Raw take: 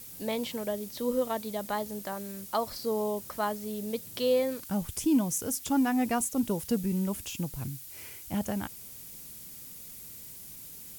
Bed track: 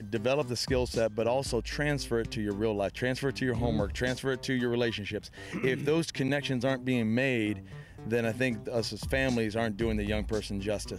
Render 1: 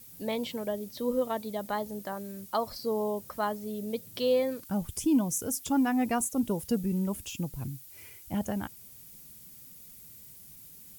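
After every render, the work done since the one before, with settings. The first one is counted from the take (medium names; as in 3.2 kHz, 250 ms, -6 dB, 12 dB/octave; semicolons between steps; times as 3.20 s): noise reduction 7 dB, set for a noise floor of -46 dBFS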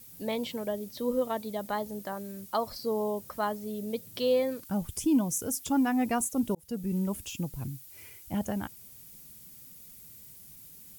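6.55–6.96 s: fade in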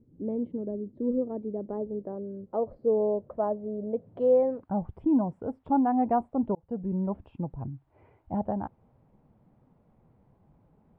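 boxcar filter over 7 samples; low-pass sweep 340 Hz -> 820 Hz, 1.05–4.74 s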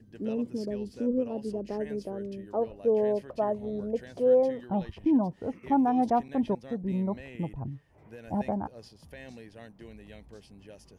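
add bed track -18 dB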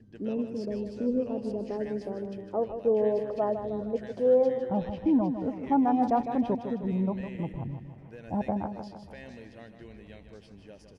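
distance through air 59 m; feedback delay 155 ms, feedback 54%, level -9 dB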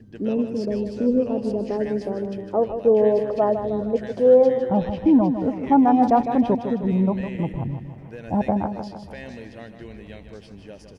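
trim +8 dB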